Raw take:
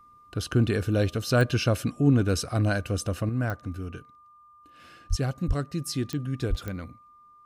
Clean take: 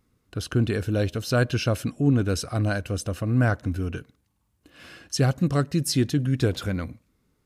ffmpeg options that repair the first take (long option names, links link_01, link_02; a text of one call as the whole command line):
ffmpeg -i in.wav -filter_complex "[0:a]adeclick=threshold=4,bandreject=frequency=1200:width=30,asplit=3[link_01][link_02][link_03];[link_01]afade=type=out:start_time=5.09:duration=0.02[link_04];[link_02]highpass=frequency=140:width=0.5412,highpass=frequency=140:width=1.3066,afade=type=in:start_time=5.09:duration=0.02,afade=type=out:start_time=5.21:duration=0.02[link_05];[link_03]afade=type=in:start_time=5.21:duration=0.02[link_06];[link_04][link_05][link_06]amix=inputs=3:normalize=0,asplit=3[link_07][link_08][link_09];[link_07]afade=type=out:start_time=5.47:duration=0.02[link_10];[link_08]highpass=frequency=140:width=0.5412,highpass=frequency=140:width=1.3066,afade=type=in:start_time=5.47:duration=0.02,afade=type=out:start_time=5.59:duration=0.02[link_11];[link_09]afade=type=in:start_time=5.59:duration=0.02[link_12];[link_10][link_11][link_12]amix=inputs=3:normalize=0,asplit=3[link_13][link_14][link_15];[link_13]afade=type=out:start_time=6.49:duration=0.02[link_16];[link_14]highpass=frequency=140:width=0.5412,highpass=frequency=140:width=1.3066,afade=type=in:start_time=6.49:duration=0.02,afade=type=out:start_time=6.61:duration=0.02[link_17];[link_15]afade=type=in:start_time=6.61:duration=0.02[link_18];[link_16][link_17][link_18]amix=inputs=3:normalize=0,asetnsamples=nb_out_samples=441:pad=0,asendcmd='3.29 volume volume 7dB',volume=0dB" out.wav